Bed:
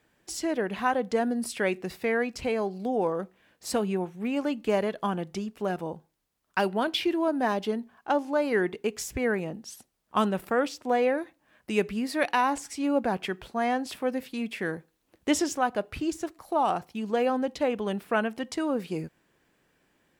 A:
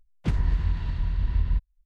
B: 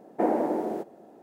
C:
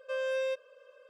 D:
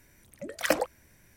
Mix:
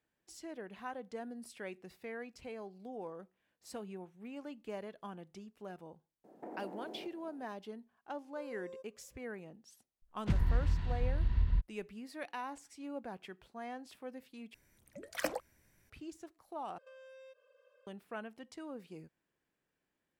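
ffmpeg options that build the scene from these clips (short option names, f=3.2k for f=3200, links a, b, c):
-filter_complex "[3:a]asplit=2[a][b];[0:a]volume=-17.5dB[c];[2:a]acompressor=threshold=-34dB:ratio=6:attack=3.2:release=140:knee=1:detection=peak[d];[a]firequalizer=gain_entry='entry(1200,0);entry(1900,-28);entry(6700,0)':delay=0.05:min_phase=1[e];[b]acompressor=threshold=-42dB:ratio=6:attack=3.2:release=140:knee=1:detection=peak[f];[c]asplit=3[g][h][i];[g]atrim=end=14.544[j];[4:a]atrim=end=1.36,asetpts=PTS-STARTPTS,volume=-10dB[k];[h]atrim=start=15.896:end=16.784[l];[f]atrim=end=1.09,asetpts=PTS-STARTPTS,volume=-11dB[m];[i]atrim=start=17.866[n];[d]atrim=end=1.22,asetpts=PTS-STARTPTS,volume=-9.5dB,afade=t=in:d=0.004:c=hsin,afade=t=out:st=1.216:d=0.004:c=hsin,adelay=6240[o];[e]atrim=end=1.09,asetpts=PTS-STARTPTS,volume=-17dB,afade=t=in:d=0.004:c=hsin,afade=t=out:st=1.086:d=0.004:c=hsin,adelay=8270[p];[1:a]atrim=end=1.85,asetpts=PTS-STARTPTS,volume=-6dB,afade=t=in:d=0.004:c=hsin,afade=t=out:st=1.846:d=0.004:c=hsin,adelay=441882S[q];[j][k]acrossfade=d=0.004:c1=hsin:c2=hsin[r];[r][l]acrossfade=d=0.004:c1=hsin:c2=hsin[s];[s][m]acrossfade=d=0.004:c1=hsin:c2=hsin[t];[t][n]acrossfade=d=0.004:c1=hsin:c2=hsin[u];[u][o][p][q]amix=inputs=4:normalize=0"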